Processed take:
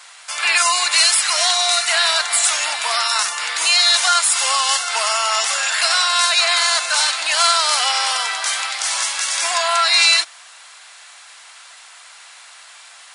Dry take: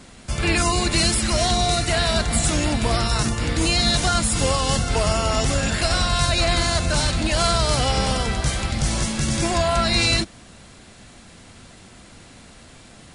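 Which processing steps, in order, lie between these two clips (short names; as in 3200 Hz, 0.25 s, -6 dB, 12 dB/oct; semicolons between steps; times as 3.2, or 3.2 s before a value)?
HPF 900 Hz 24 dB/oct; gain +7.5 dB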